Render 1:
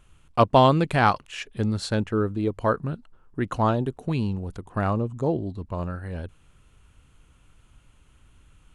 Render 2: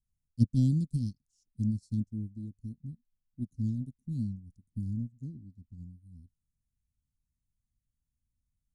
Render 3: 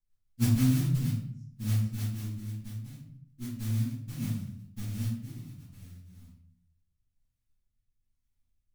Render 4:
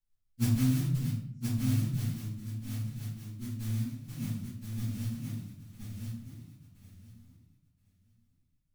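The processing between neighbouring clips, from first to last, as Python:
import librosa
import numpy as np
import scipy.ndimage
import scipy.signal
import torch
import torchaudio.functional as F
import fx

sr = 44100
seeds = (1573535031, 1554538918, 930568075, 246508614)

y1 = scipy.signal.sosfilt(scipy.signal.cheby1(4, 1.0, [250.0, 5200.0], 'bandstop', fs=sr, output='sos'), x)
y1 = fx.upward_expand(y1, sr, threshold_db=-39.0, expansion=2.5)
y1 = y1 * librosa.db_to_amplitude(2.0)
y2 = fx.mod_noise(y1, sr, seeds[0], snr_db=12)
y2 = fx.rotary_switch(y2, sr, hz=6.3, then_hz=1.1, switch_at_s=4.43)
y2 = fx.room_shoebox(y2, sr, seeds[1], volume_m3=97.0, walls='mixed', distance_m=2.2)
y2 = y2 * librosa.db_to_amplitude(-8.0)
y3 = fx.echo_feedback(y2, sr, ms=1022, feedback_pct=17, wet_db=-4.5)
y3 = y3 * librosa.db_to_amplitude(-2.5)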